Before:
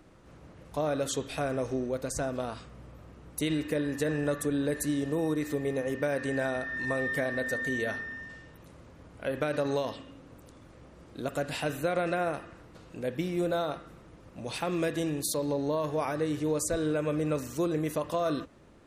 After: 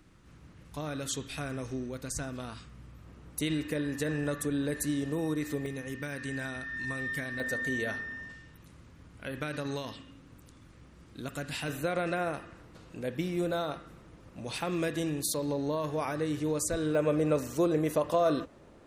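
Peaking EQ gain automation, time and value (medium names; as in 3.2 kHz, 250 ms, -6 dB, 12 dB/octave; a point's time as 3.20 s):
peaking EQ 590 Hz 1.5 oct
-11.5 dB
from 3.06 s -5 dB
from 5.66 s -15 dB
from 7.40 s -3.5 dB
from 8.32 s -10.5 dB
from 11.68 s -3 dB
from 16.95 s +4 dB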